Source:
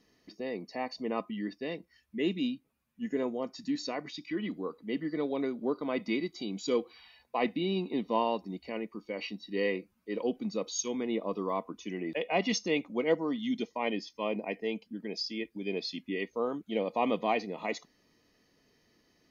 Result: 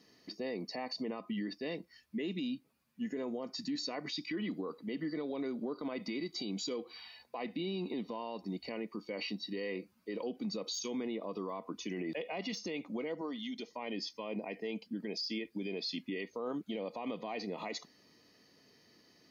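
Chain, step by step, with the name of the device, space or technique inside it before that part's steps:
broadcast voice chain (high-pass filter 100 Hz; de-essing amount 90%; downward compressor 3 to 1, threshold −33 dBFS, peak gain reduction 9.5 dB; parametric band 4,600 Hz +6 dB 0.35 octaves; brickwall limiter −33 dBFS, peak gain reduction 11 dB)
0:13.21–0:13.67: parametric band 130 Hz −13 dB 1.5 octaves
level +3 dB

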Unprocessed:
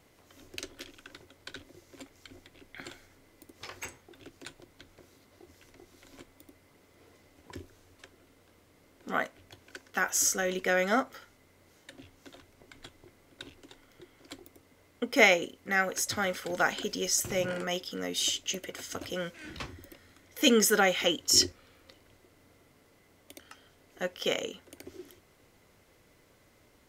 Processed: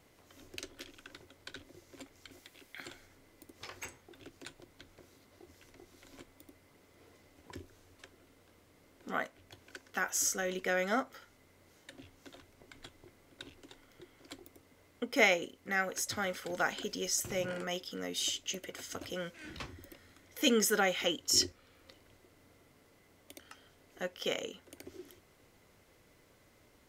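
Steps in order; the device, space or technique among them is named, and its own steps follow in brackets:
0:02.31–0:02.86: spectral tilt +2 dB per octave
parallel compression (in parallel at −5.5 dB: downward compressor, threshold −45 dBFS, peak gain reduction 26.5 dB)
on the sum: level −5.5 dB

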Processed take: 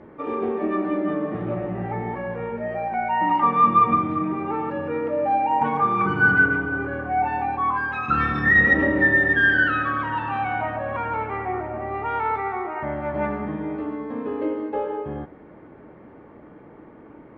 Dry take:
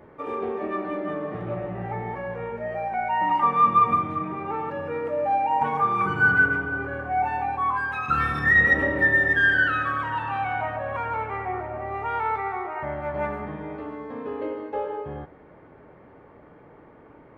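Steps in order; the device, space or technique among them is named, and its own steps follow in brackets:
inside a cardboard box (low-pass filter 4,500 Hz 12 dB per octave; hollow resonant body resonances 220/310 Hz, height 7 dB)
level +1.5 dB

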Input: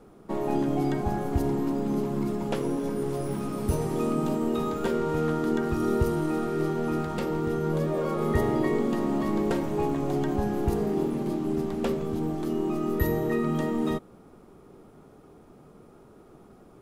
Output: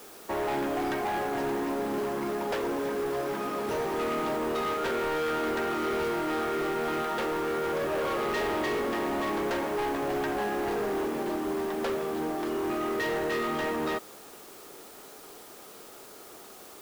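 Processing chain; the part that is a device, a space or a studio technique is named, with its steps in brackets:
drive-through speaker (band-pass filter 470–3,900 Hz; parametric band 1,700 Hz +5 dB 0.37 octaves; hard clipping −33.5 dBFS, distortion −9 dB; white noise bed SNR 20 dB)
level +6.5 dB

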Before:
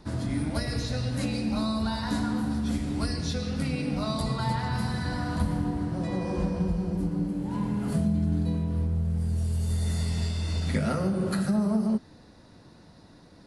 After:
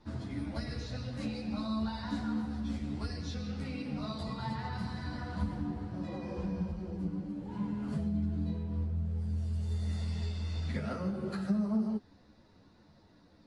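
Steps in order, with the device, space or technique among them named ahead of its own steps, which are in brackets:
string-machine ensemble chorus (string-ensemble chorus; low-pass filter 5,600 Hz 12 dB per octave)
level −5.5 dB

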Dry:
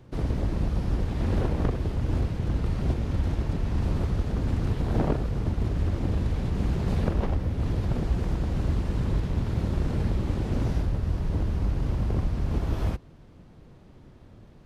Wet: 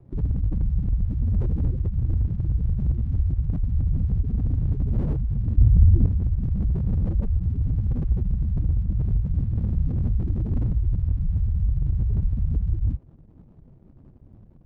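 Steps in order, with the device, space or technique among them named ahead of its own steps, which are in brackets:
gate on every frequency bin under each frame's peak −10 dB strong
early transistor amplifier (dead-zone distortion −58.5 dBFS; slew-rate limiting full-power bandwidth 6.6 Hz)
0:05.58–0:06.06: low-shelf EQ 390 Hz +8.5 dB
level +4.5 dB

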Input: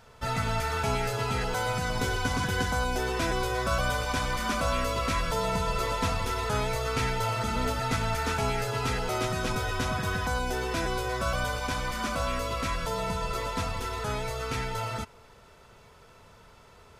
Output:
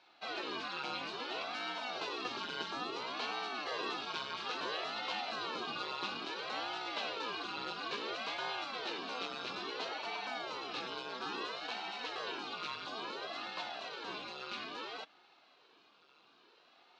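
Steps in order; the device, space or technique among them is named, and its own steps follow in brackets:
voice changer toy (ring modulator whose carrier an LFO sweeps 440 Hz, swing 85%, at 0.59 Hz; loudspeaker in its box 430–4,800 Hz, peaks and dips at 580 Hz −8 dB, 850 Hz −4 dB, 1,900 Hz −9 dB, 2,700 Hz +5 dB, 4,000 Hz +8 dB)
level −5 dB

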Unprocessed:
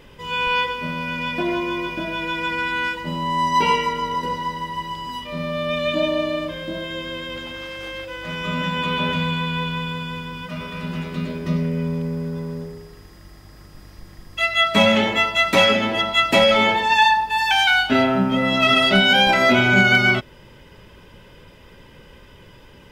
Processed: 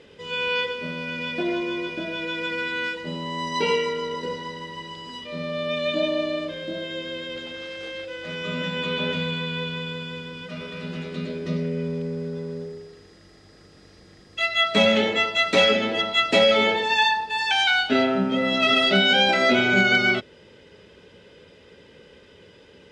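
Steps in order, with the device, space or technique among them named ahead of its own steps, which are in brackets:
car door speaker (loudspeaker in its box 100–8,500 Hz, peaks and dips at 130 Hz −8 dB, 450 Hz +8 dB, 1,000 Hz −8 dB, 4,000 Hz +5 dB)
level −3.5 dB

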